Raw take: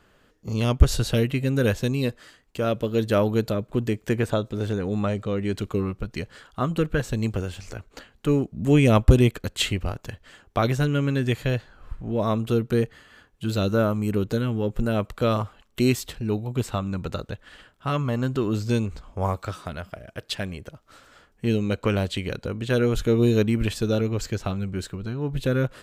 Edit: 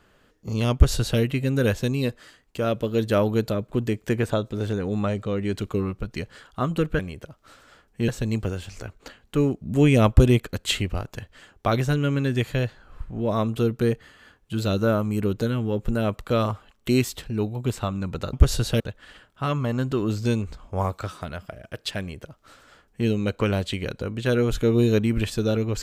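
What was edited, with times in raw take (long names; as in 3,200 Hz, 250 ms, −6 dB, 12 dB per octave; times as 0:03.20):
0:00.73–0:01.20: duplicate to 0:17.24
0:20.43–0:21.52: duplicate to 0:06.99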